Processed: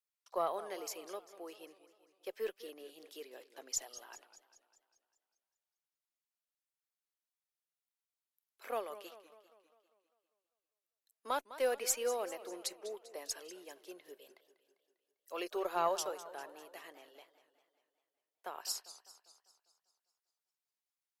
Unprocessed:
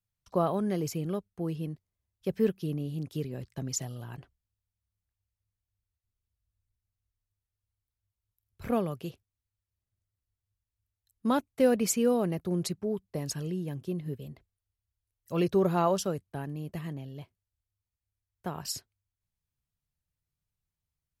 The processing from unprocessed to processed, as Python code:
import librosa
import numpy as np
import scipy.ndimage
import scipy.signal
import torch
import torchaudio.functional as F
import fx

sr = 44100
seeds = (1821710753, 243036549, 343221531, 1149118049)

y = scipy.signal.sosfilt(scipy.signal.bessel(6, 660.0, 'highpass', norm='mag', fs=sr, output='sos'), x)
y = fx.cheby_harmonics(y, sr, harmonics=(2,), levels_db=(-22,), full_scale_db=-17.0)
y = fx.echo_warbled(y, sr, ms=199, feedback_pct=55, rate_hz=2.8, cents=171, wet_db=-15.0)
y = y * librosa.db_to_amplitude(-3.0)